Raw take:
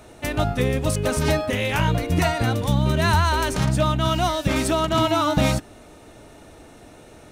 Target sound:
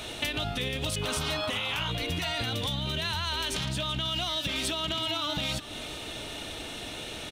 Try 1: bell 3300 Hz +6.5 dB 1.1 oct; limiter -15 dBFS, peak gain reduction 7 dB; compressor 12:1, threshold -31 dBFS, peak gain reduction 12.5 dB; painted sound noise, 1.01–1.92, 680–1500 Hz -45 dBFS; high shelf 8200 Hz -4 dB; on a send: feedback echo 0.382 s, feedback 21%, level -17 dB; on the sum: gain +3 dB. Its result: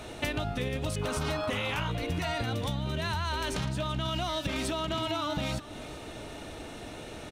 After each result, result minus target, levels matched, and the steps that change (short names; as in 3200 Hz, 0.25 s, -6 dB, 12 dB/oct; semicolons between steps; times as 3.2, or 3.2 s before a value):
4000 Hz band -5.0 dB; 8000 Hz band -2.5 dB
change: bell 3300 Hz +18 dB 1.1 oct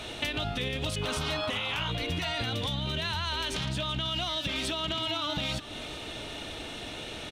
8000 Hz band -3.5 dB
change: high shelf 8200 Hz +6.5 dB